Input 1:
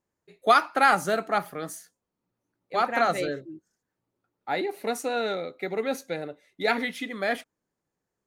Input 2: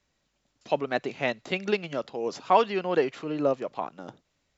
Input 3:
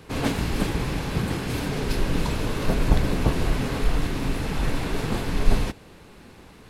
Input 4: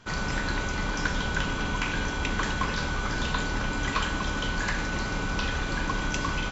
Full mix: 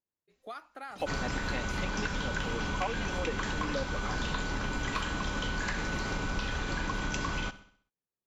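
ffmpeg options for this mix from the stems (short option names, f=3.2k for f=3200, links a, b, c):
-filter_complex "[0:a]acompressor=threshold=-31dB:ratio=2,volume=-15.5dB[a];[1:a]aecho=1:1:3.8:0.82,adelay=300,volume=-6.5dB[b];[2:a]highshelf=f=12k:g=-11,adelay=900,volume=-16.5dB[c];[3:a]adelay=1000,volume=1.5dB,asplit=2[d][e];[e]volume=-19dB,aecho=0:1:65|130|195|260|325|390:1|0.44|0.194|0.0852|0.0375|0.0165[f];[a][b][c][d][f]amix=inputs=5:normalize=0,acompressor=threshold=-30dB:ratio=4"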